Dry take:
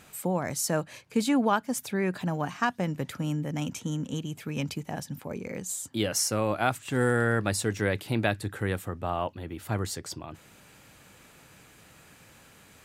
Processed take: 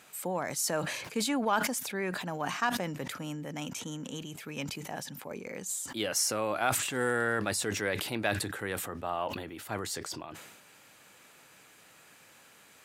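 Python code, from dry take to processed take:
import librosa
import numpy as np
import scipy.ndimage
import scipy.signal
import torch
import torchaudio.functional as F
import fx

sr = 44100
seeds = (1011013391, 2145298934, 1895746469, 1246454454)

p1 = fx.highpass(x, sr, hz=470.0, slope=6)
p2 = 10.0 ** (-20.5 / 20.0) * np.tanh(p1 / 10.0 ** (-20.5 / 20.0))
p3 = p1 + F.gain(torch.from_numpy(p2), -8.5).numpy()
p4 = fx.sustainer(p3, sr, db_per_s=44.0)
y = F.gain(torch.from_numpy(p4), -4.0).numpy()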